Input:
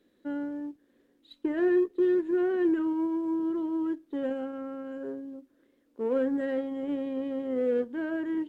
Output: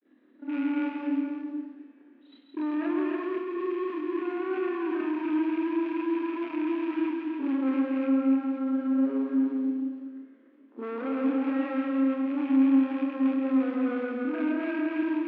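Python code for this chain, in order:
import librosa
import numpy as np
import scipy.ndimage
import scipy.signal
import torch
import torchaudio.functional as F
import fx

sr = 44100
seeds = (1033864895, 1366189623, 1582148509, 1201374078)

p1 = fx.rattle_buzz(x, sr, strikes_db=-39.0, level_db=-30.0)
p2 = fx.over_compress(p1, sr, threshold_db=-29.0, ratio=-1.0)
p3 = p1 + F.gain(torch.from_numpy(p2), 2.0).numpy()
p4 = fx.granulator(p3, sr, seeds[0], grain_ms=118.0, per_s=20.0, spray_ms=17.0, spread_st=0)
p5 = fx.mod_noise(p4, sr, seeds[1], snr_db=20)
p6 = fx.stretch_grains(p5, sr, factor=1.8, grain_ms=119.0)
p7 = 10.0 ** (-29.0 / 20.0) * np.tanh(p6 / 10.0 ** (-29.0 / 20.0))
p8 = fx.cabinet(p7, sr, low_hz=240.0, low_slope=24, high_hz=2700.0, hz=(260.0, 490.0, 1200.0), db=(10, -6, 3))
p9 = p8 + fx.echo_multitap(p8, sr, ms=(137, 167, 289, 372, 515), db=(-9.5, -8.0, -5.0, -8.5, -11.5), dry=0)
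p10 = fx.rev_freeverb(p9, sr, rt60_s=3.5, hf_ratio=0.9, predelay_ms=10, drr_db=19.5)
y = F.gain(torch.from_numpy(p10), -1.0).numpy()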